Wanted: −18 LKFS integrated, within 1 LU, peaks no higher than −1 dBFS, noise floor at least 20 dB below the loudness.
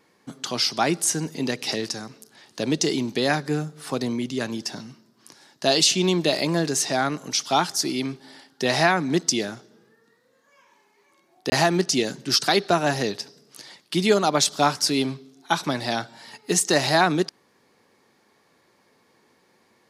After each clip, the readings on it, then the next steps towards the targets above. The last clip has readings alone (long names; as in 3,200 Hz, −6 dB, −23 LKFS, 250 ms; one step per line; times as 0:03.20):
number of dropouts 1; longest dropout 20 ms; integrated loudness −23.0 LKFS; sample peak −4.5 dBFS; target loudness −18.0 LKFS
→ repair the gap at 0:11.50, 20 ms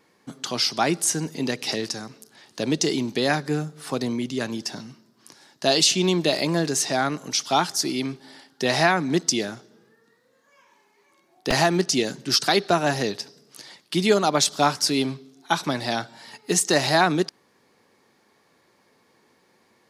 number of dropouts 0; integrated loudness −23.0 LKFS; sample peak −4.5 dBFS; target loudness −18.0 LKFS
→ level +5 dB
brickwall limiter −1 dBFS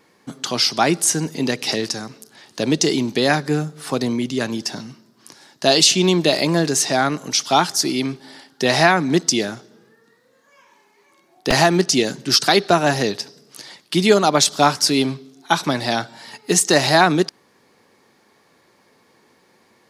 integrated loudness −18.0 LKFS; sample peak −1.0 dBFS; background noise floor −58 dBFS